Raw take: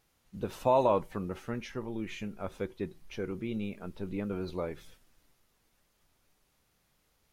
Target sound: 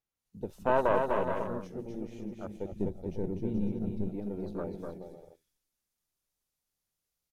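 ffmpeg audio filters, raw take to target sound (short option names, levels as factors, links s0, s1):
-filter_complex "[0:a]acrossover=split=530|4500[s0][s1][s2];[s2]dynaudnorm=f=130:g=3:m=3.35[s3];[s0][s1][s3]amix=inputs=3:normalize=0,aeval=exprs='(tanh(8.91*val(0)+0.8)-tanh(0.8))/8.91':c=same,aecho=1:1:250|425|547.5|633.2|693.3:0.631|0.398|0.251|0.158|0.1,asplit=2[s4][s5];[s5]aeval=exprs='sgn(val(0))*max(abs(val(0))-0.00668,0)':c=same,volume=0.473[s6];[s4][s6]amix=inputs=2:normalize=0,asettb=1/sr,asplit=3[s7][s8][s9];[s7]atrim=end=2.724[s10];[s8]atrim=start=2.72:end=4.1,asetpts=PTS-STARTPTS,afade=t=in:d=0.004:c=qsin,afade=t=out:st=1.376:d=0.004:c=qsin,lowshelf=f=220:g=11.5[s11];[s9]atrim=start=4.096[s12];[s10][s11]acrossfade=d=0.004:c1=hsin:c2=qsin[s13];[s13][s12]acrossfade=d=0.004:c1=qsin:c2=hsin,afwtdn=0.00891"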